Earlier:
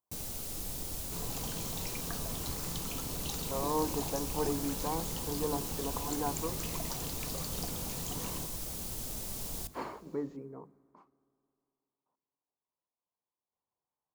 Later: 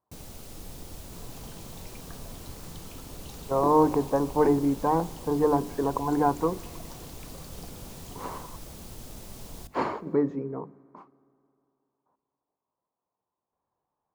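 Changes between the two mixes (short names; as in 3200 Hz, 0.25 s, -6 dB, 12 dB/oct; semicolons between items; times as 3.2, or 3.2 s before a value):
speech +12.0 dB; second sound -5.5 dB; master: add high shelf 4500 Hz -9.5 dB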